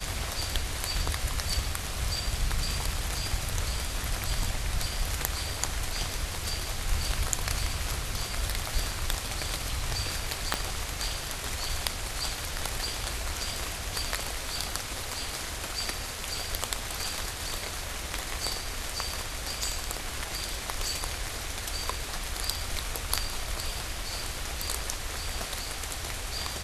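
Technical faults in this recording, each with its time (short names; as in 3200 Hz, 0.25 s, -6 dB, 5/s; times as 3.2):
10.54 pop -10 dBFS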